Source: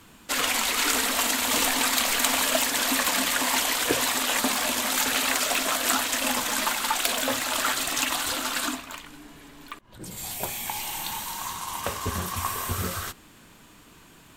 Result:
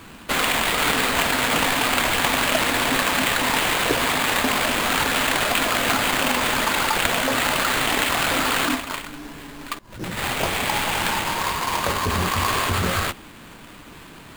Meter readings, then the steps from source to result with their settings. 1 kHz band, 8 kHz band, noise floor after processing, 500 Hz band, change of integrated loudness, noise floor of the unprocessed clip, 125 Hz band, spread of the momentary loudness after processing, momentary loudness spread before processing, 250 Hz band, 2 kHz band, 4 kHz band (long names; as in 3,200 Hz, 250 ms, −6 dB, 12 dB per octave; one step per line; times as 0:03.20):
+6.5 dB, −1.5 dB, −43 dBFS, +7.0 dB, +4.0 dB, −52 dBFS, +9.0 dB, 8 LU, 10 LU, +6.5 dB, +6.5 dB, +3.5 dB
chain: in parallel at −2 dB: compressor whose output falls as the input rises −30 dBFS, ratio −0.5
on the sum: sample-rate reduction 5,700 Hz, jitter 20%
level +2 dB